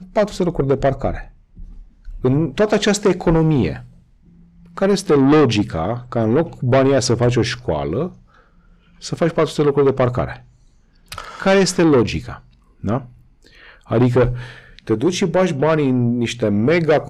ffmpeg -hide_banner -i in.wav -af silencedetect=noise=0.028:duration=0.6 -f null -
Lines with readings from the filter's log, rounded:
silence_start: 3.84
silence_end: 4.78 | silence_duration: 0.93
silence_start: 8.11
silence_end: 9.03 | silence_duration: 0.92
silence_start: 10.36
silence_end: 11.12 | silence_duration: 0.76